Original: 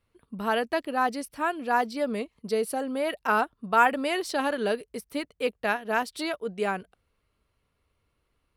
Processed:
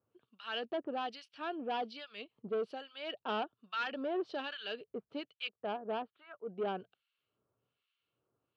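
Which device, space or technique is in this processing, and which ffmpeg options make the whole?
guitar amplifier with harmonic tremolo: -filter_complex "[0:a]asplit=3[a][b][c];[a]afade=t=out:st=5.47:d=0.02[d];[b]lowpass=f=1.4k:w=0.5412,lowpass=f=1.4k:w=1.3066,afade=t=in:st=5.47:d=0.02,afade=t=out:st=6.48:d=0.02[e];[c]afade=t=in:st=6.48:d=0.02[f];[d][e][f]amix=inputs=3:normalize=0,acrossover=split=1400[g][h];[g]aeval=exprs='val(0)*(1-1/2+1/2*cos(2*PI*1.2*n/s))':c=same[i];[h]aeval=exprs='val(0)*(1-1/2-1/2*cos(2*PI*1.2*n/s))':c=same[j];[i][j]amix=inputs=2:normalize=0,asoftclip=type=tanh:threshold=-27.5dB,highpass=f=320:p=1,highpass=97,equalizer=f=120:t=q:w=4:g=10,equalizer=f=370:t=q:w=4:g=3,equalizer=f=1k:t=q:w=4:g=-5,equalizer=f=2k:t=q:w=4:g=-10,equalizer=f=3k:t=q:w=4:g=6,lowpass=f=4.1k:w=0.5412,lowpass=f=4.1k:w=1.3066,volume=-1.5dB"

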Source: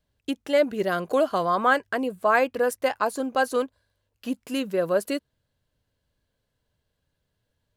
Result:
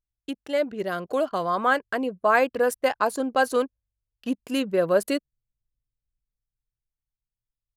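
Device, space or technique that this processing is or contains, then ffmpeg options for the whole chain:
voice memo with heavy noise removal: -af "anlmdn=0.251,dynaudnorm=f=210:g=17:m=7dB,volume=-4dB"

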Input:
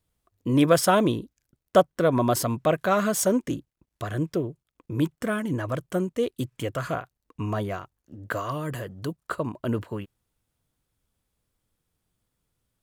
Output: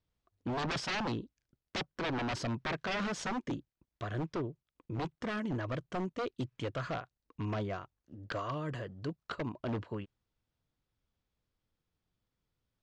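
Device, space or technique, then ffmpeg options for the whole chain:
synthesiser wavefolder: -af "aeval=exprs='0.075*(abs(mod(val(0)/0.075+3,4)-2)-1)':c=same,lowpass=f=5.7k:w=0.5412,lowpass=f=5.7k:w=1.3066,volume=-6.5dB"

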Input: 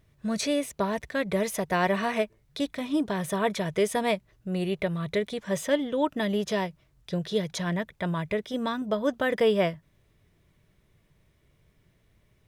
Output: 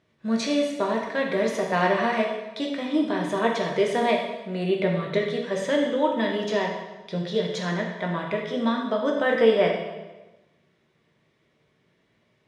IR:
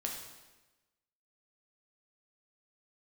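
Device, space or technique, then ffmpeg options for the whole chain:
supermarket ceiling speaker: -filter_complex "[0:a]asettb=1/sr,asplit=3[a][b][c];[a]atrim=end=4.704[d];[b]atrim=start=4.7:end=5.18,asetpts=PTS-STARTPTS,afade=t=in:d=0.004:c=qsin,afade=t=out:st=0.476:d=0.004:c=qsin,equalizer=f=210:t=o:w=2.5:g=5[e];[c]atrim=start=5.176[f];[d][e]acrossfade=d=0.004:c1=hsin:c2=qsin[g];[g][f]acrossfade=d=0.004:c1=qsin:c2=hsin,highpass=210,lowpass=5.1k[h];[1:a]atrim=start_sample=2205[i];[h][i]afir=irnorm=-1:irlink=0,volume=2.5dB"

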